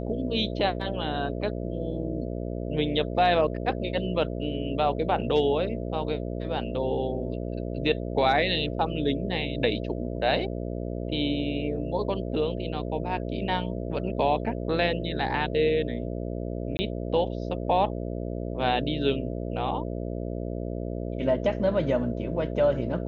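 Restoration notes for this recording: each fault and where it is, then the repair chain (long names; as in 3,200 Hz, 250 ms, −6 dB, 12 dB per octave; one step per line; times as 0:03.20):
mains buzz 60 Hz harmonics 11 −32 dBFS
0:16.77–0:16.79: drop-out 20 ms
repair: hum removal 60 Hz, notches 11
repair the gap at 0:16.77, 20 ms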